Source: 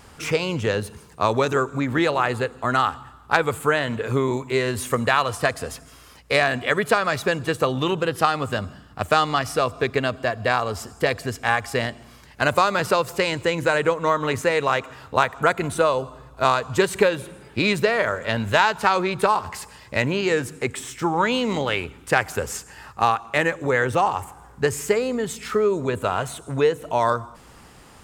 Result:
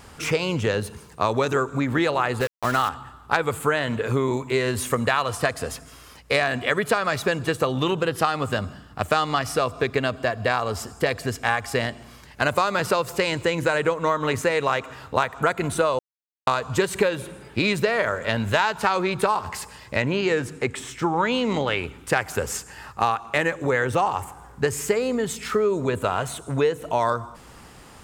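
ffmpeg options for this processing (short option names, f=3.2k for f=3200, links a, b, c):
-filter_complex "[0:a]asettb=1/sr,asplit=3[a][b][c];[a]atrim=end=2.404[d];[b]atrim=start=2.4:end=2.89,asetpts=PTS-STARTPTS,afade=t=in:d=0.004:c=qsin,afade=t=out:st=0.486:d=0.004:c=qsin,aeval=exprs='val(0)*gte(abs(val(0)),0.0398)':c=same[e];[c]atrim=start=2.886[f];[d][e]acrossfade=d=0.004:c1=hsin:c2=qsin[g];[g][f]acrossfade=d=0.004:c1=qsin:c2=hsin,asettb=1/sr,asplit=3[h][i][j];[h]atrim=end=19.964[k];[i]atrim=start=19.96:end=21.84,asetpts=PTS-STARTPTS,afade=t=in:d=0.004:c=qsin,afade=t=out:st=1.876:d=0.004:c=qsin,highshelf=f=8.2k:g=-10[l];[j]atrim=start=21.836[m];[k][l]acrossfade=d=0.004:c1=hsin:c2=qsin[n];[n][m]acrossfade=d=0.004:c1=qsin:c2=hsin,asplit=3[o][p][q];[o]atrim=end=15.99,asetpts=PTS-STARTPTS,afade=t=out:st=15.986:d=0.004:c=hsin[r];[p]atrim=start=15.99:end=16.47,asetpts=PTS-STARTPTS,volume=0[s];[q]atrim=start=16.47,asetpts=PTS-STARTPTS,afade=t=in:d=0.004:c=hsin[t];[r][s][t]concat=n=3:v=0:a=1,acompressor=threshold=-21dB:ratio=2,volume=1.5dB"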